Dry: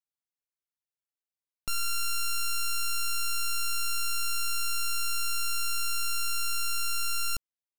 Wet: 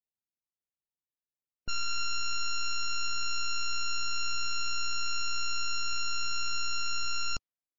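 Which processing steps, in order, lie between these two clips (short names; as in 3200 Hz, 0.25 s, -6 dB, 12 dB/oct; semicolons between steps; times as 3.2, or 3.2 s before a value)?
low-pass opened by the level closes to 420 Hz, open at -27.5 dBFS; MP3 32 kbps 16000 Hz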